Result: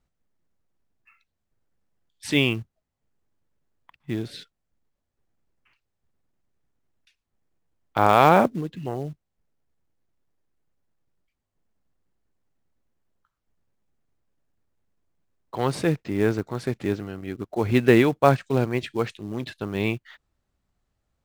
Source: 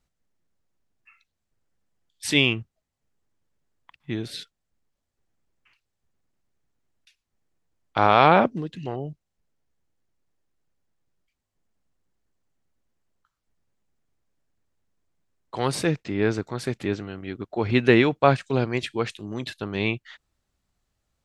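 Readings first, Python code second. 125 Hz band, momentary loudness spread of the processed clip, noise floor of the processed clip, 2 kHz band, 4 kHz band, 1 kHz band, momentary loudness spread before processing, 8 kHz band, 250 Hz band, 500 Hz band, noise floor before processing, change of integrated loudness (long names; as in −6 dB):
+1.0 dB, 17 LU, −80 dBFS, −2.0 dB, −4.0 dB, 0.0 dB, 17 LU, −3.5 dB, +1.0 dB, +1.0 dB, −81 dBFS, 0.0 dB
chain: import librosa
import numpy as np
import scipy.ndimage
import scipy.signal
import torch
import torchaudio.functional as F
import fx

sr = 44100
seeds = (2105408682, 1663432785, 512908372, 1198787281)

p1 = fx.high_shelf(x, sr, hz=2400.0, db=-8.0)
p2 = fx.quant_float(p1, sr, bits=2)
p3 = p1 + (p2 * 10.0 ** (-4.0 / 20.0))
y = p3 * 10.0 ** (-3.0 / 20.0)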